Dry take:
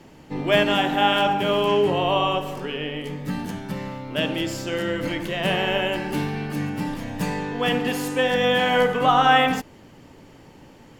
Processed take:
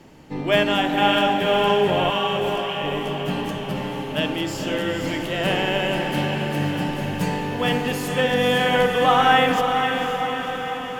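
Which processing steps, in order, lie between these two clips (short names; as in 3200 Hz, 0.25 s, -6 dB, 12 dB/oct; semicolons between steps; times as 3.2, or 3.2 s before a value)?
2.1–2.84 HPF 1200 Hz; diffused feedback echo 0.517 s, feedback 64%, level -5.5 dB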